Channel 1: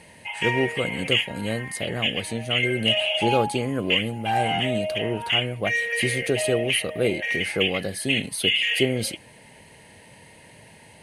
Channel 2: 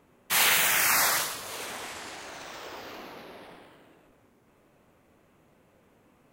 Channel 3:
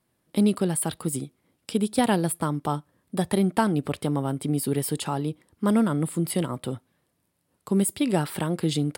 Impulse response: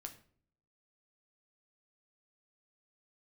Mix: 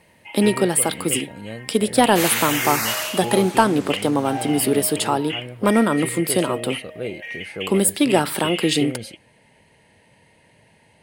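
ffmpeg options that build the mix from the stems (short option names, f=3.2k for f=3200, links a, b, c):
-filter_complex "[0:a]highshelf=f=5.8k:g=-7,volume=-6dB[a];[1:a]adelay=1850,volume=-0.5dB[b];[2:a]highpass=290,acontrast=90,volume=0.5dB,asplit=2[c][d];[d]volume=-9dB[e];[3:a]atrim=start_sample=2205[f];[e][f]afir=irnorm=-1:irlink=0[g];[a][b][c][g]amix=inputs=4:normalize=0"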